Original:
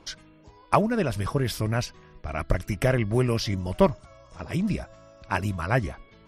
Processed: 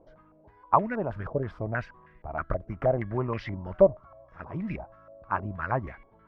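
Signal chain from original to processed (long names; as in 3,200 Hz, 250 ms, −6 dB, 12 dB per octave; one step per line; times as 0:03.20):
low-pass on a step sequencer 6.3 Hz 610–2,000 Hz
level −7.5 dB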